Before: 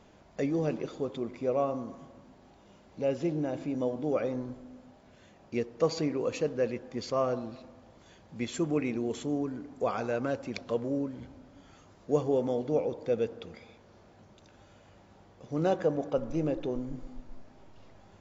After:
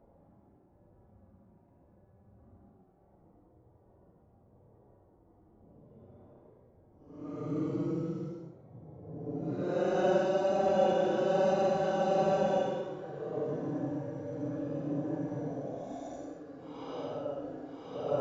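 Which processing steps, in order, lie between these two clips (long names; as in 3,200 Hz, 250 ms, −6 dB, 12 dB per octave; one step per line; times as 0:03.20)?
low-pass that shuts in the quiet parts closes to 580 Hz, open at −27.5 dBFS
granular cloud, grains 20 per second, spray 100 ms, pitch spread up and down by 0 semitones
extreme stretch with random phases 15×, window 0.05 s, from 0:14.98
level −2 dB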